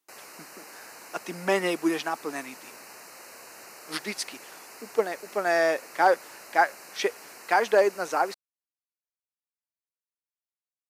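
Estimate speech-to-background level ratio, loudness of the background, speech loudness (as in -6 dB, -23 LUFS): 18.0 dB, -45.0 LUFS, -27.0 LUFS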